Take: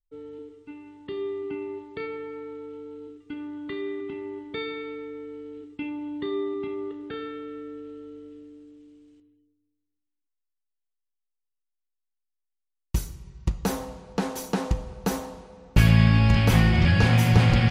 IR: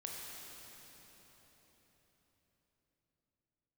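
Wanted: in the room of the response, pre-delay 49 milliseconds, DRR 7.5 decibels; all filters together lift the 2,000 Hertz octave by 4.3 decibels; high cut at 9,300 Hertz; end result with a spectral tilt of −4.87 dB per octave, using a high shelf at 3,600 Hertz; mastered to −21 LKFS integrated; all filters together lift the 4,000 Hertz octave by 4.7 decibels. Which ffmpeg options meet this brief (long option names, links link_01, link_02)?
-filter_complex "[0:a]lowpass=9300,equalizer=frequency=2000:width_type=o:gain=4.5,highshelf=frequency=3600:gain=-4.5,equalizer=frequency=4000:width_type=o:gain=7.5,asplit=2[link_01][link_02];[1:a]atrim=start_sample=2205,adelay=49[link_03];[link_02][link_03]afir=irnorm=-1:irlink=0,volume=-6.5dB[link_04];[link_01][link_04]amix=inputs=2:normalize=0,volume=3.5dB"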